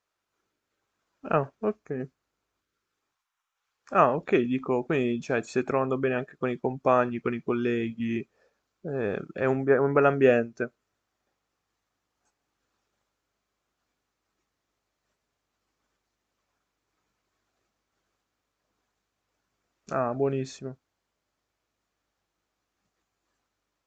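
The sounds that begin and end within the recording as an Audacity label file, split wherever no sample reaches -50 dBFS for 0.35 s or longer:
1.240000	2.070000	sound
3.870000	8.230000	sound
8.840000	10.680000	sound
19.880000	20.740000	sound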